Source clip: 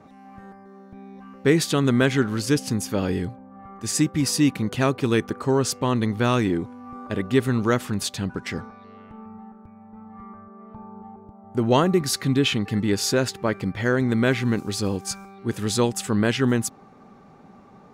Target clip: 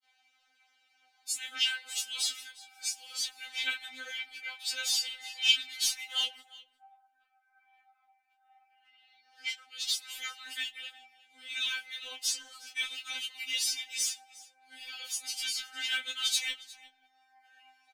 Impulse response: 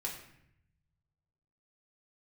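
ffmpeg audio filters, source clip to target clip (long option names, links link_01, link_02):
-filter_complex "[0:a]areverse,aecho=1:1:6.4:0.72,flanger=delay=18:depth=7.8:speed=0.29,highpass=frequency=2900:width_type=q:width=2.6,aphaser=in_gain=1:out_gain=1:delay=4.3:decay=0.53:speed=1.9:type=sinusoidal,aecho=1:1:358:0.0891,asplit=2[link_01][link_02];[1:a]atrim=start_sample=2205,highshelf=frequency=11000:gain=7[link_03];[link_02][link_03]afir=irnorm=-1:irlink=0,volume=-19dB[link_04];[link_01][link_04]amix=inputs=2:normalize=0,afftfilt=real='re*3.46*eq(mod(b,12),0)':imag='im*3.46*eq(mod(b,12),0)':win_size=2048:overlap=0.75,volume=-3.5dB"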